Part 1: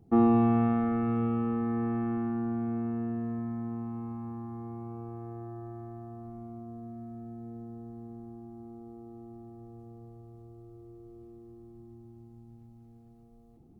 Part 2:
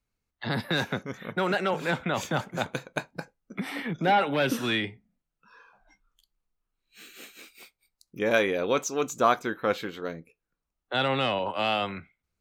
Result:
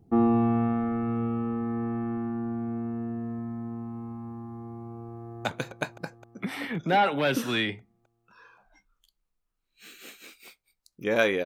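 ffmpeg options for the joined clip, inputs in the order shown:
ffmpeg -i cue0.wav -i cue1.wav -filter_complex "[0:a]apad=whole_dur=11.45,atrim=end=11.45,atrim=end=5.452[link_01];[1:a]atrim=start=2.598:end=8.6[link_02];[link_01][link_02]acrossfade=duration=0.004:curve1=hsin:curve2=hsin,asplit=2[link_03][link_04];[link_04]afade=type=in:start_time=5.17:duration=0.01,afade=type=out:start_time=5.45:duration=0.01,aecho=0:1:260|520|780|1040|1300|1560|1820|2080|2340|2600|2860|3120:0.375837|0.281878|0.211409|0.158556|0.118917|0.089188|0.066891|0.0501682|0.0376262|0.0282196|0.0211647|0.0158735[link_05];[link_03][link_05]amix=inputs=2:normalize=0" out.wav

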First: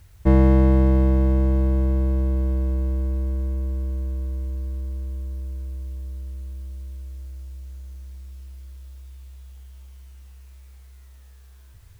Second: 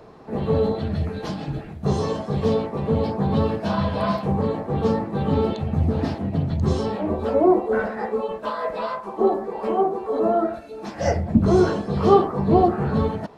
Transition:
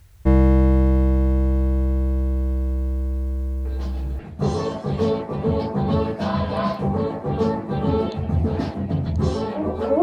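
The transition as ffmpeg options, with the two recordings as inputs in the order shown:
ffmpeg -i cue0.wav -i cue1.wav -filter_complex "[1:a]asplit=2[link_01][link_02];[0:a]apad=whole_dur=10.02,atrim=end=10.02,atrim=end=4.192[link_03];[link_02]atrim=start=1.628:end=7.46[link_04];[link_01]atrim=start=1.09:end=1.63,asetpts=PTS-STARTPTS,volume=-8.5dB,afade=type=in:duration=0.004:curve=hsin,afade=type=out:start_time=0.536:duration=0.004:curve=hsin,adelay=160965S[link_05];[link_03][link_04]acrossfade=duration=0.004:curve1=hsin:curve2=hsin[link_06];[link_06][link_05]amix=inputs=2:normalize=0" out.wav

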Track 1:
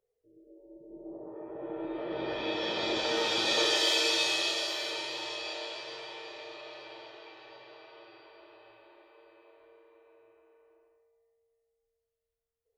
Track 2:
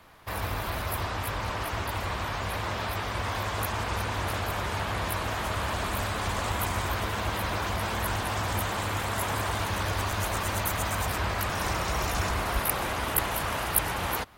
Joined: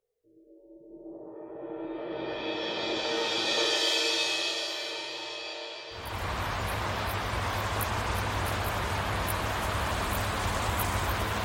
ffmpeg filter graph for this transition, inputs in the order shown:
ffmpeg -i cue0.wav -i cue1.wav -filter_complex "[0:a]apad=whole_dur=11.44,atrim=end=11.44,atrim=end=6.47,asetpts=PTS-STARTPTS[link_01];[1:a]atrim=start=1.71:end=7.26,asetpts=PTS-STARTPTS[link_02];[link_01][link_02]acrossfade=duration=0.58:curve1=qsin:curve2=qsin" out.wav

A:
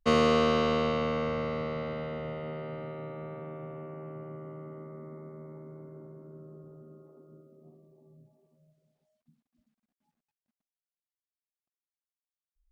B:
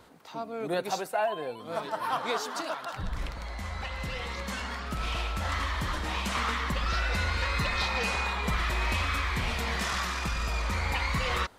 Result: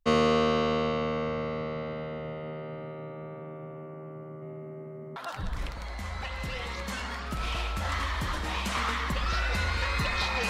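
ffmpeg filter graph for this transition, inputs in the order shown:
ffmpeg -i cue0.wav -i cue1.wav -filter_complex "[0:a]asplit=3[link_01][link_02][link_03];[link_01]afade=type=out:start_time=4.41:duration=0.02[link_04];[link_02]aecho=1:1:794:0.531,afade=type=in:start_time=4.41:duration=0.02,afade=type=out:start_time=5.16:duration=0.02[link_05];[link_03]afade=type=in:start_time=5.16:duration=0.02[link_06];[link_04][link_05][link_06]amix=inputs=3:normalize=0,apad=whole_dur=10.49,atrim=end=10.49,atrim=end=5.162[link_07];[1:a]atrim=start=2.758:end=8.09[link_08];[link_07][link_08]acrossfade=duration=0.004:curve1=hsin:curve2=hsin" out.wav

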